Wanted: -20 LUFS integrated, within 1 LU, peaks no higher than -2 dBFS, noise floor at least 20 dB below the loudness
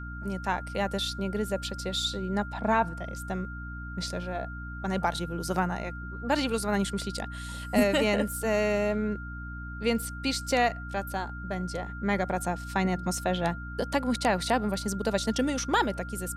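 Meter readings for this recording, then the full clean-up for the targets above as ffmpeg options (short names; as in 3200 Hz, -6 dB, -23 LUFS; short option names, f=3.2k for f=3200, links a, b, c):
hum 60 Hz; harmonics up to 300 Hz; hum level -37 dBFS; steady tone 1400 Hz; tone level -41 dBFS; loudness -29.5 LUFS; peak -12.0 dBFS; loudness target -20.0 LUFS
-> -af "bandreject=f=60:t=h:w=6,bandreject=f=120:t=h:w=6,bandreject=f=180:t=h:w=6,bandreject=f=240:t=h:w=6,bandreject=f=300:t=h:w=6"
-af "bandreject=f=1.4k:w=30"
-af "volume=9.5dB"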